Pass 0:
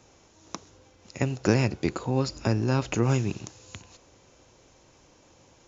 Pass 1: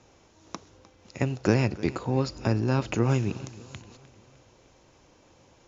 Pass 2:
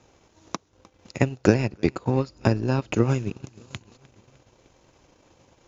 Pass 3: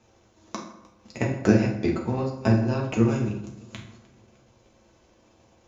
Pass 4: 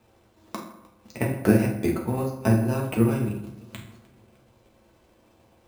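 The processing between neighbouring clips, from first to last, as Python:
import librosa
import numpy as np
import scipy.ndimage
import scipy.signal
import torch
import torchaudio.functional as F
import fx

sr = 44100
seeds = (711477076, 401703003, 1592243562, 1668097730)

y1 = fx.air_absorb(x, sr, metres=65.0)
y1 = fx.echo_feedback(y1, sr, ms=304, feedback_pct=49, wet_db=-19.5)
y2 = fx.notch(y1, sr, hz=5500.0, q=29.0)
y2 = fx.transient(y2, sr, attack_db=7, sustain_db=-11)
y3 = fx.rev_fdn(y2, sr, rt60_s=0.83, lf_ratio=1.0, hf_ratio=0.65, size_ms=27.0, drr_db=-1.5)
y3 = y3 * librosa.db_to_amplitude(-5.5)
y4 = np.repeat(scipy.signal.resample_poly(y3, 1, 4), 4)[:len(y3)]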